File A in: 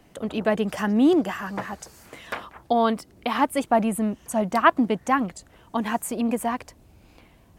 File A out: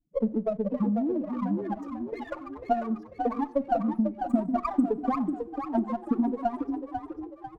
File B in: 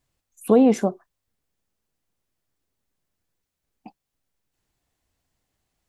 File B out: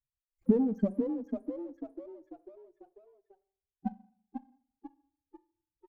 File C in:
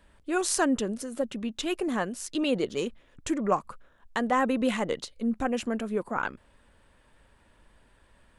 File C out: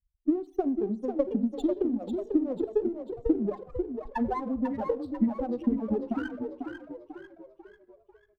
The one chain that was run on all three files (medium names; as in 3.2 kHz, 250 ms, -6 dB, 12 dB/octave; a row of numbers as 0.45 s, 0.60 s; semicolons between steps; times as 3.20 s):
gate -50 dBFS, range -24 dB; reverb removal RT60 0.56 s; spectral gate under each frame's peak -10 dB strong; dynamic bell 1.9 kHz, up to -3 dB, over -41 dBFS, Q 0.85; saturation -19.5 dBFS; compression 10:1, threshold -33 dBFS; loudest bins only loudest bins 4; transient shaper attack +9 dB, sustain -8 dB; distance through air 250 m; frequency-shifting echo 494 ms, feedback 45%, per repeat +38 Hz, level -6.5 dB; Schroeder reverb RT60 0.59 s, combs from 32 ms, DRR 16.5 dB; sliding maximum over 5 samples; peak normalisation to -12 dBFS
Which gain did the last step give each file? +6.5 dB, +6.5 dB, +5.5 dB